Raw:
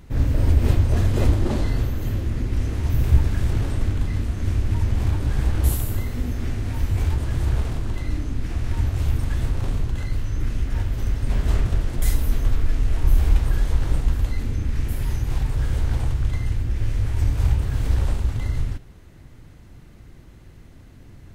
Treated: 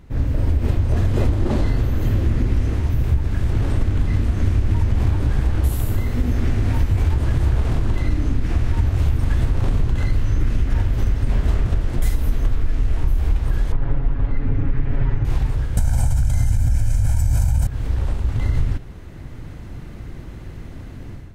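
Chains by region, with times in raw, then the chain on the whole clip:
13.72–15.25 LPF 2000 Hz + comb 7.2 ms, depth 93%
15.77–17.67 resonant high shelf 5200 Hz +13.5 dB, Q 1.5 + comb 1.3 ms, depth 93% + fast leveller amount 100%
whole clip: AGC; high shelf 3700 Hz -7 dB; compressor, threshold -13 dBFS

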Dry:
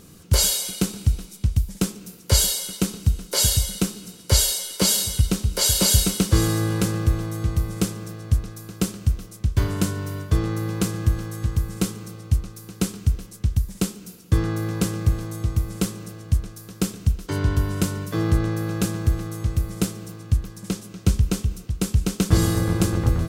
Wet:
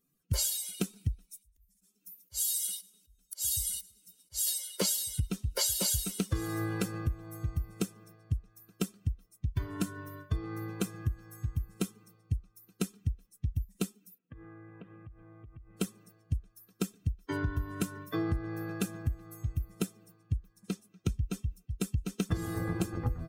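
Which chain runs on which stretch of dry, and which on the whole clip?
1.31–4.47 high shelf 3300 Hz +6 dB + auto swell 0.413 s + split-band echo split 840 Hz, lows 0.165 s, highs 0.105 s, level -14 dB
14.18–15.77 LPF 3000 Hz 24 dB/oct + compressor 5:1, threshold -29 dBFS
whole clip: per-bin expansion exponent 2; high shelf 6400 Hz +9 dB; compressor 6:1, threshold -28 dBFS

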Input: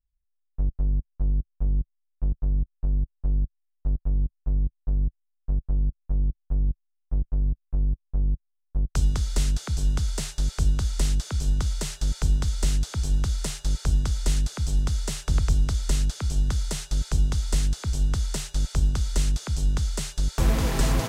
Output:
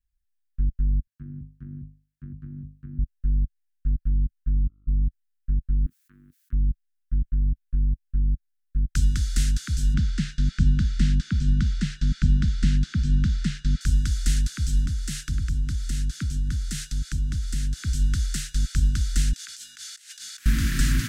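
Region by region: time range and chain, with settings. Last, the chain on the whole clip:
1.07–2.99 HPF 85 Hz 24 dB/oct + notches 50/100/150/200/250/300/350 Hz
4.62–5.02 steep low-pass 960 Hz 48 dB/oct + buzz 50 Hz, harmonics 27, -59 dBFS -7 dB/oct
5.86–6.53 HPF 610 Hz + high shelf 5700 Hz +9.5 dB + fast leveller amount 50%
9.94–13.81 LPF 4000 Hz + bell 190 Hz +12.5 dB 0.95 oct
14.86–17.77 compressor 2.5:1, threshold -28 dBFS + bell 170 Hz +4.5 dB 3 oct + three-band expander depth 40%
19.33–20.46 HPF 1500 Hz + negative-ratio compressor -42 dBFS, ratio -0.5
whole clip: Chebyshev band-stop 280–1700 Hz, order 3; band shelf 1100 Hz +8.5 dB 1.3 oct; gain +1.5 dB

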